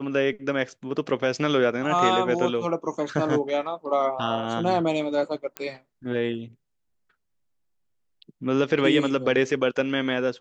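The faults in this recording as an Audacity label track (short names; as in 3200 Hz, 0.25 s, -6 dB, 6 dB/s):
5.570000	5.570000	pop -14 dBFS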